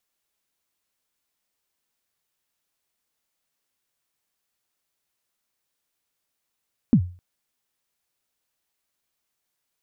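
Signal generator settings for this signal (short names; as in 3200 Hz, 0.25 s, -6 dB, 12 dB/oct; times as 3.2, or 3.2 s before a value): kick drum length 0.26 s, from 270 Hz, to 89 Hz, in 77 ms, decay 0.37 s, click off, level -8.5 dB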